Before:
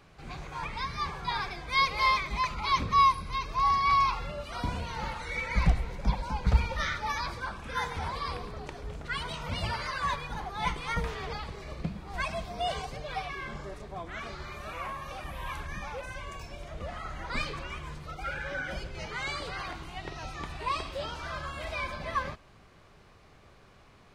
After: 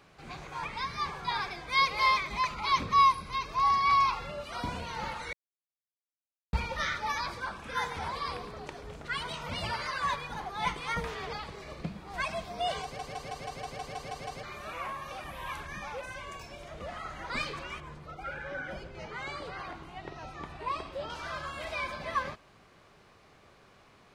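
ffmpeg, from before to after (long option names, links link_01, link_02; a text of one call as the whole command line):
ffmpeg -i in.wav -filter_complex "[0:a]asettb=1/sr,asplit=3[link_01][link_02][link_03];[link_01]atrim=end=17.804[link_04];[link_02]atrim=start=17.8:end=21.1,asetpts=PTS-STARTPTS,afade=type=in:duration=0.004:curve=qsin,afade=type=out:start_time=3.296:duration=0.004:curve=qsin,highshelf=frequency=2100:gain=-10.5[link_05];[link_03]atrim=start=21.096[link_06];[link_04][link_05]acrossfade=duration=0.004:curve1=hsin:curve2=qsin[link_07];[link_07][link_06]acrossfade=duration=0.004:curve1=qsin:curve2=hsin,asplit=13[link_08][link_09][link_10][link_11][link_12][link_13][link_14][link_15][link_16][link_17][link_18][link_19][link_20];[link_08]atrim=end=5.33,asetpts=PTS-STARTPTS,afade=type=out:start_time=5.326:duration=0.004:curve=hsin[link_21];[link_09]atrim=start=5.33:end=6.53,asetpts=PTS-STARTPTS,volume=0[link_22];[link_10]atrim=start=6.53:end=12.992,asetpts=PTS-STARTPTS,afade=type=in:duration=0.004:curve=hsin[link_23];[link_11]atrim=start=12.828:end=12.992[link_24];[link_12]atrim=start=12.828:end=12.992[link_25];[link_13]atrim=start=12.828:end=12.992[link_26];[link_14]atrim=start=12.828:end=12.992[link_27];[link_15]atrim=start=12.828:end=12.992[link_28];[link_16]atrim=start=12.828:end=12.992[link_29];[link_17]atrim=start=12.828:end=12.992[link_30];[link_18]atrim=start=12.828:end=12.992[link_31];[link_19]atrim=start=12.828:end=12.992[link_32];[link_20]atrim=start=14.428[link_33];[link_21][link_22][link_23]concat=n=3:v=0:a=1[link_34];[link_34][link_24]acrossfade=duration=0.004:curve1=hsin:curve2=hsin[link_35];[link_35][link_25]acrossfade=duration=0.004:curve1=hsin:curve2=hsin[link_36];[link_36][link_26]acrossfade=duration=0.004:curve1=hsin:curve2=hsin[link_37];[link_37][link_27]acrossfade=duration=0.004:curve1=hsin:curve2=hsin[link_38];[link_38][link_28]acrossfade=duration=0.004:curve1=hsin:curve2=hsin[link_39];[link_39][link_29]acrossfade=duration=0.004:curve1=hsin:curve2=hsin[link_40];[link_40][link_30]acrossfade=duration=0.004:curve1=hsin:curve2=hsin[link_41];[link_41][link_31]acrossfade=duration=0.004:curve1=hsin:curve2=hsin[link_42];[link_42][link_32]acrossfade=duration=0.004:curve1=hsin:curve2=hsin[link_43];[link_43][link_33]acrossfade=duration=0.004:curve1=hsin:curve2=hsin,lowshelf=frequency=100:gain=-11.5" out.wav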